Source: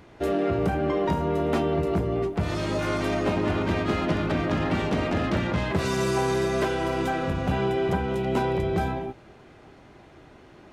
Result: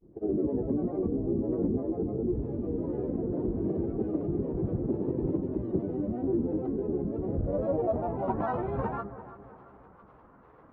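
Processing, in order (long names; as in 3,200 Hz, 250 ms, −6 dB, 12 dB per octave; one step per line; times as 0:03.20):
granular cloud, pitch spread up and down by 12 semitones
low-pass filter sweep 360 Hz → 1,200 Hz, 0:07.09–0:08.61
on a send: bucket-brigade delay 336 ms, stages 4,096, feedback 45%, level −14 dB
on the sum: level −6.5 dB
Ogg Vorbis 64 kbit/s 44,100 Hz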